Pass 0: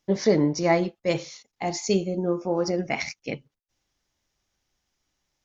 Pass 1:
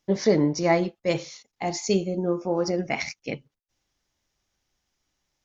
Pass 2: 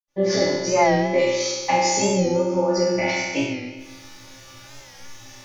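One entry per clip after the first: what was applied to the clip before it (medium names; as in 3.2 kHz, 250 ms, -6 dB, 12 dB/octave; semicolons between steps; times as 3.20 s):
no audible change
recorder AGC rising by 67 dB/s; reverberation RT60 1.4 s, pre-delay 77 ms; warped record 45 rpm, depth 100 cents; trim +6 dB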